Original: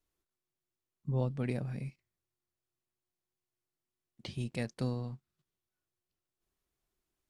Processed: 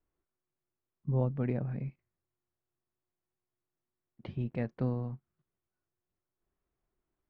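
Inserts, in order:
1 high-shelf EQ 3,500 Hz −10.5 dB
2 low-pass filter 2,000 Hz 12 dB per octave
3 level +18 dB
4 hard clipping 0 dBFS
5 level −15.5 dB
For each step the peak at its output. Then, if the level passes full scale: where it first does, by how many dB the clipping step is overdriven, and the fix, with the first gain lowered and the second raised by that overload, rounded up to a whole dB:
−20.0, −20.0, −2.0, −2.0, −17.5 dBFS
no step passes full scale

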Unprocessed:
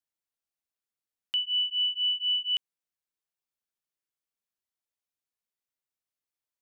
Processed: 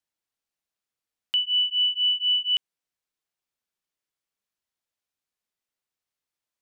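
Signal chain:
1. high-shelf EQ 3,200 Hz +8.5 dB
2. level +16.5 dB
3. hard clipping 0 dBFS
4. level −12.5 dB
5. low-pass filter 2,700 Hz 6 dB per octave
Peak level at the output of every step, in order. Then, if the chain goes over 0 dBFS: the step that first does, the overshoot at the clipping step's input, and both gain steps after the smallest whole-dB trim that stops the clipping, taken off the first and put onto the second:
−18.0, −1.5, −1.5, −14.0, −17.5 dBFS
no step passes full scale

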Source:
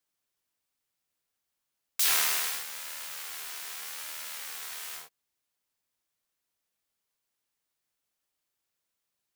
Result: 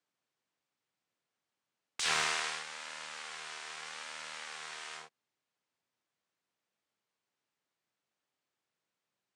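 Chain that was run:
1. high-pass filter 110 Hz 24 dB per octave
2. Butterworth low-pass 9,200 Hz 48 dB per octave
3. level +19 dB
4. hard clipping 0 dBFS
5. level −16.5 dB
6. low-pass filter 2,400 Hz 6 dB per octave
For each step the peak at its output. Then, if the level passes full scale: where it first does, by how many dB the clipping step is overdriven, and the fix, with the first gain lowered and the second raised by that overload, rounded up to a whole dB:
−10.5, −13.0, +6.0, 0.0, −16.5, −18.0 dBFS
step 3, 6.0 dB
step 3 +13 dB, step 5 −10.5 dB

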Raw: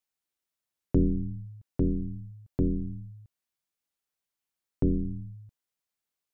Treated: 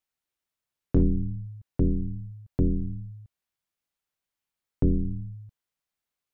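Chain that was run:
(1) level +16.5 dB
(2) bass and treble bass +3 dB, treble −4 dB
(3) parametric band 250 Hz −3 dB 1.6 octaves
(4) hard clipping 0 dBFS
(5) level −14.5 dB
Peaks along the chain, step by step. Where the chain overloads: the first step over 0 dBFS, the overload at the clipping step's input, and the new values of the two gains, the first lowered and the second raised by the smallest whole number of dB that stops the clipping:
+1.5, +4.0, +4.0, 0.0, −14.5 dBFS
step 1, 4.0 dB
step 1 +12.5 dB, step 5 −10.5 dB

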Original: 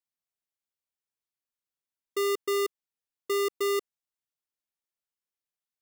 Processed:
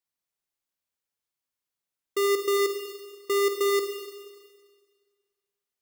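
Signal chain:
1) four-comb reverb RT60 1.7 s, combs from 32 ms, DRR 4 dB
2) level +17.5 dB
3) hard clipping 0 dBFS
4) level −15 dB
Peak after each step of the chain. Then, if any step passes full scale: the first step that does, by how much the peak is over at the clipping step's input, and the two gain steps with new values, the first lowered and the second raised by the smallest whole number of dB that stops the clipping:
−19.5, −2.0, −2.0, −17.0 dBFS
no step passes full scale

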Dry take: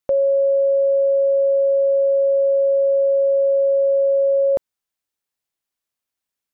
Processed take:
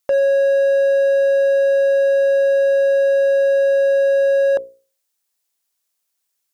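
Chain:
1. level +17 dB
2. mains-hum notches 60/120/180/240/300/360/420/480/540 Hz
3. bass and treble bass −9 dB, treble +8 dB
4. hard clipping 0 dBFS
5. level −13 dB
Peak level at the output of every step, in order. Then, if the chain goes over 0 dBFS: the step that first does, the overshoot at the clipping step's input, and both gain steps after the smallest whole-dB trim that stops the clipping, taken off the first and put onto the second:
+4.0, +4.5, +4.0, 0.0, −13.0 dBFS
step 1, 4.0 dB
step 1 +13 dB, step 5 −9 dB

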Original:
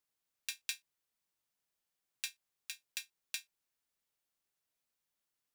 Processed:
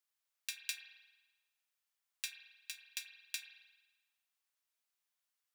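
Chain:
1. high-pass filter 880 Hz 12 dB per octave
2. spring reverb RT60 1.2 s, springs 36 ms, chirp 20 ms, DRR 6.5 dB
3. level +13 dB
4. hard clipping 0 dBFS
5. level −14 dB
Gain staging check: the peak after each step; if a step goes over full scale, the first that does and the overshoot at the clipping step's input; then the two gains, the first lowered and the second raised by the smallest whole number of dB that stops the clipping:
−15.0, −15.0, −2.0, −2.0, −16.0 dBFS
no step passes full scale

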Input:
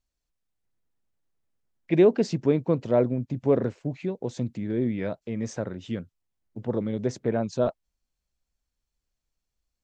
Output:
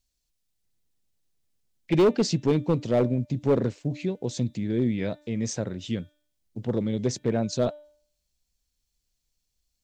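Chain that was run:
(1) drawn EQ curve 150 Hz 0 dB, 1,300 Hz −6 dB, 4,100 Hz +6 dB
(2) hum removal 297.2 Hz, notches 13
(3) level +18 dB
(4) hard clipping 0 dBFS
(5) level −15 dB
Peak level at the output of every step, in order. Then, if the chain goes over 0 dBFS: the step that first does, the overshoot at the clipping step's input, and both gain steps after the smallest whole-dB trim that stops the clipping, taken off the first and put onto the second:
−9.0, −9.0, +9.0, 0.0, −15.0 dBFS
step 3, 9.0 dB
step 3 +9 dB, step 5 −6 dB

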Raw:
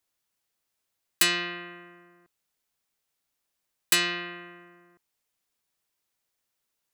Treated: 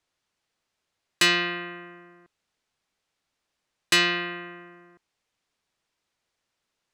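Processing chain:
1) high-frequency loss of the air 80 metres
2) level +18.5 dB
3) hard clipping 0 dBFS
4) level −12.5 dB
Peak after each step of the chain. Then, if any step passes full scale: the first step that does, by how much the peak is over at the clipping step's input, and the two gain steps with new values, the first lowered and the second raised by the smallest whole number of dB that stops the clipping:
−13.0, +5.5, 0.0, −12.5 dBFS
step 2, 5.5 dB
step 2 +12.5 dB, step 4 −6.5 dB

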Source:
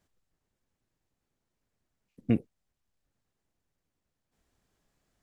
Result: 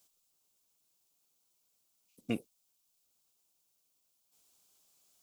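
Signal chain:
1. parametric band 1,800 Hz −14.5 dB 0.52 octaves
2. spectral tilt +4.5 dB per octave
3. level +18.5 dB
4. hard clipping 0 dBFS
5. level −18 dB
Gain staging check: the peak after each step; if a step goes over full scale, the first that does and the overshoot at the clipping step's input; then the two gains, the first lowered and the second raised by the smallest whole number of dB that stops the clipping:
−12.0, −20.0, −1.5, −1.5, −19.5 dBFS
no step passes full scale

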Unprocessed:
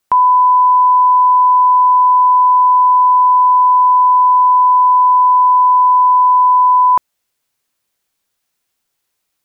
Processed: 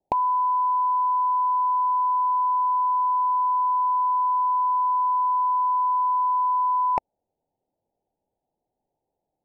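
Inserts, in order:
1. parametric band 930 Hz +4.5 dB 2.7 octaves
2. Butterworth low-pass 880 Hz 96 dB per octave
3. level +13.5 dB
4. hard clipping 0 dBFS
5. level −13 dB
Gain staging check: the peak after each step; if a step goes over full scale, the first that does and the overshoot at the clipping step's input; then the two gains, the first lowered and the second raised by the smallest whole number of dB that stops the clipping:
−1.5, −9.5, +4.0, 0.0, −13.0 dBFS
step 3, 4.0 dB
step 3 +9.5 dB, step 5 −9 dB

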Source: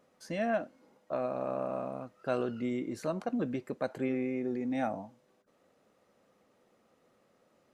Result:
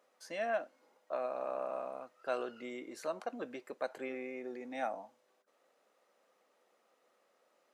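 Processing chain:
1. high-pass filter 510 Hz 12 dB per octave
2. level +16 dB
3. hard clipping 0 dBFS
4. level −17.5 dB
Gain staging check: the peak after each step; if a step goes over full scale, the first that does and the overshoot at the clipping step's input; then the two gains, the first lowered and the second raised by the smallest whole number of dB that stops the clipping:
−21.5, −5.5, −5.5, −23.0 dBFS
no step passes full scale

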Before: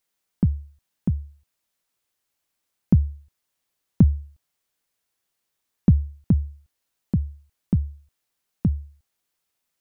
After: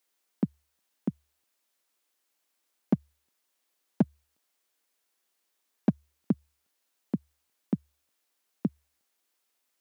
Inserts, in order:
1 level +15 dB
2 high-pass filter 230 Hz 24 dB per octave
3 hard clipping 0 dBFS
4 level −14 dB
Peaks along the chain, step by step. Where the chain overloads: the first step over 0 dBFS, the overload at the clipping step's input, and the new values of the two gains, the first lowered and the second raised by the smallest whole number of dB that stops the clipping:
+10.0, +4.5, 0.0, −14.0 dBFS
step 1, 4.5 dB
step 1 +10 dB, step 4 −9 dB

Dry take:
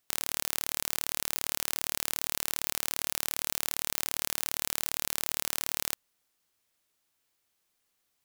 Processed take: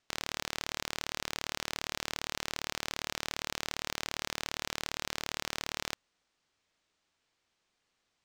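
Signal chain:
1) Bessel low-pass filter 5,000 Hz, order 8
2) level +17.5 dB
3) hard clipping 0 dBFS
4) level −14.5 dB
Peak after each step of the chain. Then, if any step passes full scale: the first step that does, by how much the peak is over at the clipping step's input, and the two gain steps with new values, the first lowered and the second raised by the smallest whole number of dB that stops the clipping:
−14.0, +3.5, 0.0, −14.5 dBFS
step 2, 3.5 dB
step 2 +13.5 dB, step 4 −10.5 dB

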